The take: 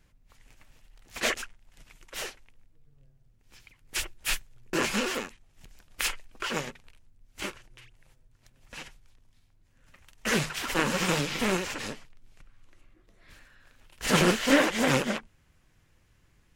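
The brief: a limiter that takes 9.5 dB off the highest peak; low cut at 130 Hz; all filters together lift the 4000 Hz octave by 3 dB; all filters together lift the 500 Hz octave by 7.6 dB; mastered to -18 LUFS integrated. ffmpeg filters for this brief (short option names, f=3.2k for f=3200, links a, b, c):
-af "highpass=130,equalizer=f=500:t=o:g=9,equalizer=f=4k:t=o:g=4,volume=10dB,alimiter=limit=-4dB:level=0:latency=1"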